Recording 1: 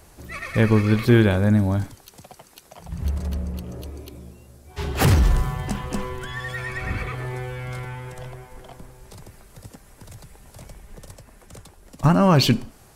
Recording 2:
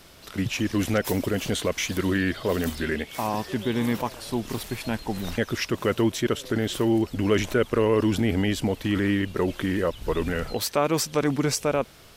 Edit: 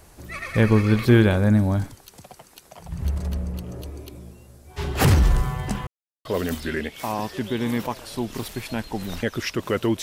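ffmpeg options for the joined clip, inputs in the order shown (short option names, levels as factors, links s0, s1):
-filter_complex "[0:a]apad=whole_dur=10.02,atrim=end=10.02,asplit=2[s0][s1];[s0]atrim=end=5.87,asetpts=PTS-STARTPTS,afade=t=out:st=5.866:d=0.004:c=hsin[s2];[s1]atrim=start=5.87:end=6.25,asetpts=PTS-STARTPTS,volume=0[s3];[1:a]atrim=start=2.4:end=6.17,asetpts=PTS-STARTPTS,afade=t=in:d=0.004:c=hsin[s4];[s2][s3][s4]concat=n=3:v=0:a=1"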